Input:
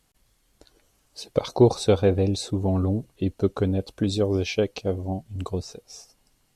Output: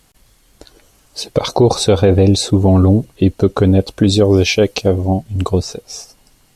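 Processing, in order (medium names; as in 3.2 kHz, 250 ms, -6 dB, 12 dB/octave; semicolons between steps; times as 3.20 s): 4.35–4.86 s: treble shelf 8.9 kHz -> 4.9 kHz +6.5 dB; loudness maximiser +14.5 dB; trim -1 dB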